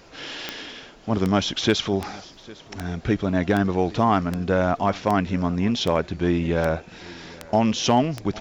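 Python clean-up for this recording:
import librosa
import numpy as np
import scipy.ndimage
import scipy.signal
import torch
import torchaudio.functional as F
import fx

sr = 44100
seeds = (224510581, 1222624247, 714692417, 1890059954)

y = fx.fix_declip(x, sr, threshold_db=-9.0)
y = fx.fix_declick_ar(y, sr, threshold=10.0)
y = fx.fix_echo_inverse(y, sr, delay_ms=805, level_db=-22.0)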